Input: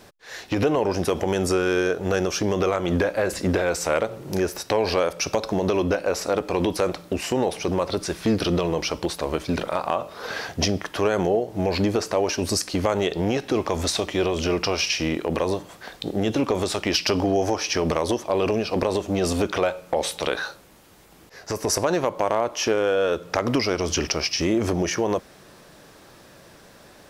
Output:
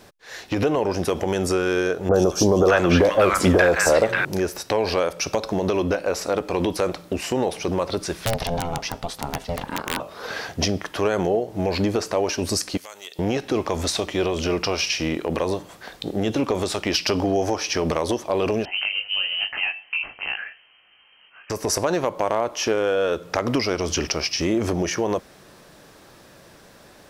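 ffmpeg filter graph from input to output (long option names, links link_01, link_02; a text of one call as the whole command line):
ffmpeg -i in.wav -filter_complex "[0:a]asettb=1/sr,asplit=3[link_01][link_02][link_03];[link_01]atrim=end=2.094[link_04];[link_02]atrim=start=2.09:end=4.25,asetpts=PTS-STARTPTS,afade=type=in:duration=0.004:curve=qsin,afade=type=out:start_time=2.156:duration=0.004:curve=qsin,equalizer=frequency=1500:width=0.66:gain=6.5,acontrast=37,acrossover=split=980|4100[link_05][link_06][link_07];[link_07]adelay=50[link_08];[link_06]adelay=590[link_09];[link_05][link_09][link_08]amix=inputs=3:normalize=0,atrim=end_sample=95256[link_10];[link_03]atrim=start=4.246[link_11];[link_04][link_10]acrossfade=duration=0.004:curve1=hsin:curve2=qsin[link_12];[link_12][link_11]acrossfade=duration=0.004:curve1=qsin:curve2=hsin,asettb=1/sr,asplit=3[link_13][link_14][link_15];[link_13]atrim=end=8.254[link_16];[link_14]atrim=start=8.25:end=10,asetpts=PTS-STARTPTS,afade=type=in:duration=0.004:curve=qsin,afade=type=out:start_time=1.746:duration=0.004:curve=qsin,aeval=exprs='val(0)*sin(2*PI*340*n/s)':channel_layout=same,aeval=exprs='(mod(4.47*val(0)+1,2)-1)/4.47':channel_layout=same[link_17];[link_15]atrim=start=9.996[link_18];[link_16][link_17]acrossfade=duration=0.004:curve1=hsin:curve2=qsin[link_19];[link_19][link_18]acrossfade=duration=0.004:curve1=qsin:curve2=hsin,asettb=1/sr,asplit=3[link_20][link_21][link_22];[link_20]atrim=end=12.774[link_23];[link_21]atrim=start=12.77:end=13.19,asetpts=PTS-STARTPTS,afade=type=in:duration=0.004:curve=qsin,afade=type=out:start_time=0.416:duration=0.004:curve=qsin,aderivative,aeval=exprs='0.0668*(abs(mod(val(0)/0.0668+3,4)-2)-1)':channel_layout=same[link_24];[link_22]atrim=start=13.186[link_25];[link_23][link_24]acrossfade=duration=0.004:curve1=hsin:curve2=qsin[link_26];[link_26][link_25]acrossfade=duration=0.004:curve1=qsin:curve2=hsin,asettb=1/sr,asplit=3[link_27][link_28][link_29];[link_27]atrim=end=18.654[link_30];[link_28]atrim=start=18.65:end=21.5,asetpts=PTS-STARTPTS,afade=type=in:duration=0.004:curve=qsin,afade=type=out:start_time=2.846:duration=0.004:curve=qsin,flanger=delay=19:depth=2:speed=2.9,lowpass=frequency=2700:width_type=q:width=0.5098,lowpass=frequency=2700:width_type=q:width=0.6013,lowpass=frequency=2700:width_type=q:width=0.9,lowpass=frequency=2700:width_type=q:width=2.563,afreqshift=-3200[link_31];[link_29]atrim=start=21.496[link_32];[link_30][link_31]acrossfade=duration=0.004:curve1=hsin:curve2=qsin[link_33];[link_33][link_32]acrossfade=duration=0.004:curve1=qsin:curve2=hsin" out.wav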